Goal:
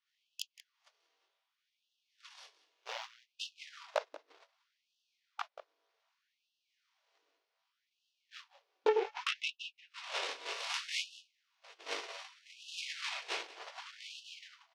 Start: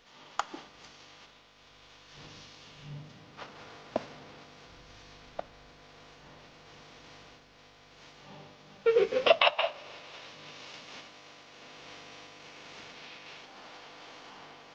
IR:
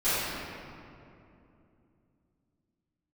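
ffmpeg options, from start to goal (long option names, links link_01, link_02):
-af "highpass=62,bandreject=frequency=50:width_type=h:width=6,bandreject=frequency=100:width_type=h:width=6,bandreject=frequency=150:width_type=h:width=6,bandreject=frequency=200:width_type=h:width=6,bandreject=frequency=250:width_type=h:width=6,afreqshift=-28,acompressor=threshold=-43dB:ratio=20,flanger=delay=19.5:depth=4.4:speed=0.52,aeval=exprs='0.0188*(cos(1*acos(clip(val(0)/0.0188,-1,1)))-cos(1*PI/2))+0.00422*(cos(4*acos(clip(val(0)/0.0188,-1,1)))-cos(4*PI/2))':channel_layout=same,agate=range=-40dB:threshold=-49dB:ratio=16:detection=peak,aecho=1:1:183:0.133,afftfilt=real='re*gte(b*sr/1024,280*pow(2600/280,0.5+0.5*sin(2*PI*0.65*pts/sr)))':imag='im*gte(b*sr/1024,280*pow(2600/280,0.5+0.5*sin(2*PI*0.65*pts/sr)))':win_size=1024:overlap=0.75,volume=18dB"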